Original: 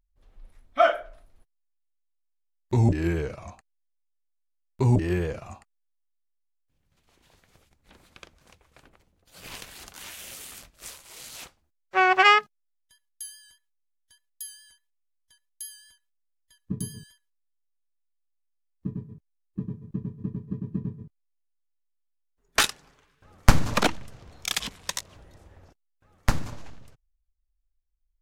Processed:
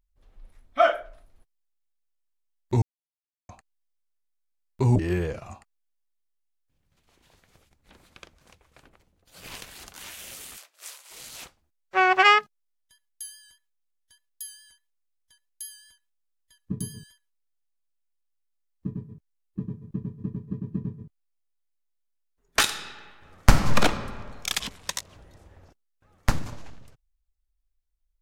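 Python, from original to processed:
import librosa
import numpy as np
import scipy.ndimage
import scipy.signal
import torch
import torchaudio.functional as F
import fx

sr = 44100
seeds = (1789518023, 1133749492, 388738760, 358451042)

y = fx.bessel_highpass(x, sr, hz=660.0, order=8, at=(10.56, 11.1), fade=0.02)
y = fx.reverb_throw(y, sr, start_s=22.6, length_s=1.24, rt60_s=1.7, drr_db=5.5)
y = fx.edit(y, sr, fx.silence(start_s=2.82, length_s=0.67), tone=tone)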